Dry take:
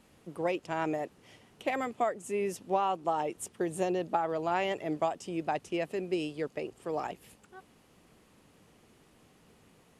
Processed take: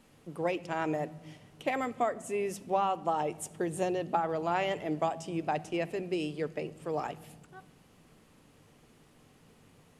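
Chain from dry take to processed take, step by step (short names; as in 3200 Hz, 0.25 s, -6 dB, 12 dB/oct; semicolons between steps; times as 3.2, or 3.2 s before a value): on a send: resonant low shelf 240 Hz +9.5 dB, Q 1.5 + reverb RT60 1.3 s, pre-delay 4 ms, DRR 13.5 dB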